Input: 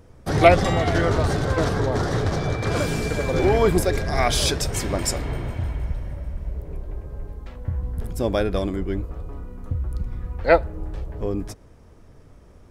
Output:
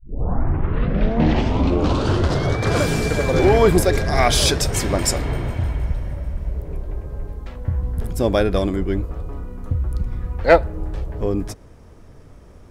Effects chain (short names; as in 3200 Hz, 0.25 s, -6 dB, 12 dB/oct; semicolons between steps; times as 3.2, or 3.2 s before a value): tape start at the beginning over 2.61 s; in parallel at -6.5 dB: overloaded stage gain 13 dB; on the sum: gain +1 dB